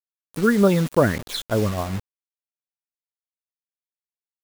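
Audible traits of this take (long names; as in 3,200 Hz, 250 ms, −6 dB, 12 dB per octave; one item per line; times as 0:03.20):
phaser sweep stages 8, 3.4 Hz, lowest notch 690–2,300 Hz
tremolo triangle 6.8 Hz, depth 30%
a quantiser's noise floor 6 bits, dither none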